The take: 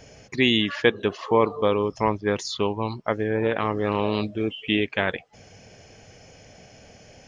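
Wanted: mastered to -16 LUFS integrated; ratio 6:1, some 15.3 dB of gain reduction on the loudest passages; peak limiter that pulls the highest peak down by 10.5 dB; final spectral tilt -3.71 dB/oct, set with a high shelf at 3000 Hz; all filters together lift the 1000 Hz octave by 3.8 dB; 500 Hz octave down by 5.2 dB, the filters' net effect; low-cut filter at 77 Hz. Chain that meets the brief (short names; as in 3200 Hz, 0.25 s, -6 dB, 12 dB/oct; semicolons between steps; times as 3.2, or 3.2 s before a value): HPF 77 Hz; bell 500 Hz -7.5 dB; bell 1000 Hz +5.5 dB; high shelf 3000 Hz +5.5 dB; compressor 6:1, threshold -31 dBFS; gain +23 dB; limiter -1 dBFS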